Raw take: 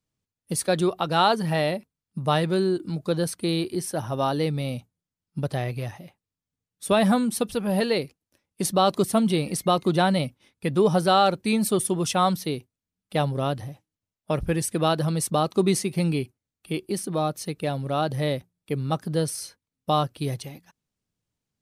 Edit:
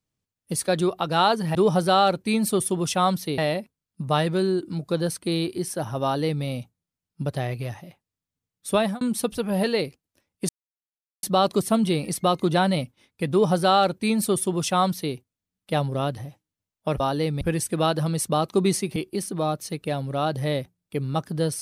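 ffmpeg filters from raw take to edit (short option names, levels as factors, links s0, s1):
-filter_complex "[0:a]asplit=8[s0][s1][s2][s3][s4][s5][s6][s7];[s0]atrim=end=1.552[s8];[s1]atrim=start=10.738:end=12.572[s9];[s2]atrim=start=1.548:end=7.18,asetpts=PTS-STARTPTS,afade=t=out:st=5.382:d=0.25[s10];[s3]atrim=start=7.18:end=8.66,asetpts=PTS-STARTPTS,afade=t=in:d=0.004:c=hsin,afade=t=out:st=1.476:d=0.004:c=hsin,apad=pad_dur=0.74[s11];[s4]atrim=start=8.66:end=14.432,asetpts=PTS-STARTPTS,afade=t=in:d=0.004:c=hsin[s12];[s5]atrim=start=4.198:end=4.612[s13];[s6]atrim=start=14.428:end=15.982[s14];[s7]atrim=start=16.718[s15];[s8][s9]acrossfade=d=0.004:c1=hsin:c2=hsin[s16];[s10][s11][s12]concat=n=3:v=0:a=1[s17];[s16][s17]acrossfade=d=0.004:c1=hsin:c2=hsin[s18];[s18][s13]acrossfade=d=0.004:c1=hsin:c2=hsin[s19];[s19][s14]acrossfade=d=0.004:c1=hsin:c2=hsin[s20];[s20][s15]acrossfade=d=0.004:c1=hsin:c2=hsin"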